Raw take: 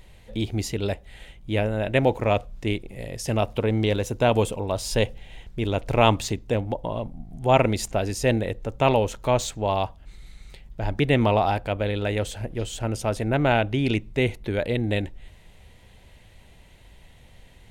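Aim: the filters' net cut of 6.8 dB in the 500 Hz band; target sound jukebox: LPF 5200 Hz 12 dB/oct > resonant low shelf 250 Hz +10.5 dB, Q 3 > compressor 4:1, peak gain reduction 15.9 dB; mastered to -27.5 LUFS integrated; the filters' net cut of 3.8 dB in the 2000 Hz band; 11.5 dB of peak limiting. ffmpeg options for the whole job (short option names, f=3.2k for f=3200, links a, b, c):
-af "equalizer=f=500:t=o:g=-4.5,equalizer=f=2k:t=o:g=-4.5,alimiter=limit=-18dB:level=0:latency=1,lowpass=5.2k,lowshelf=f=250:t=q:w=3:g=10.5,acompressor=threshold=-30dB:ratio=4,volume=5.5dB"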